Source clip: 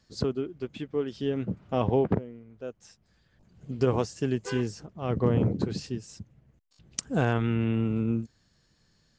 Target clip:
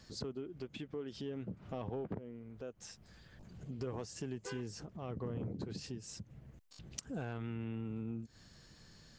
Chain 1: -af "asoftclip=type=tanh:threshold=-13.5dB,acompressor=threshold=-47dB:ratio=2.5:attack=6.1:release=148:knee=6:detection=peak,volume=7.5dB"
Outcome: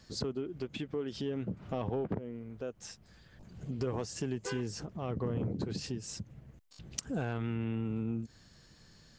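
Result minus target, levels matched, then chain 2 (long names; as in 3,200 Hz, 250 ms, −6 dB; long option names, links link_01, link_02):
downward compressor: peak gain reduction −6.5 dB
-af "asoftclip=type=tanh:threshold=-13.5dB,acompressor=threshold=-57.5dB:ratio=2.5:attack=6.1:release=148:knee=6:detection=peak,volume=7.5dB"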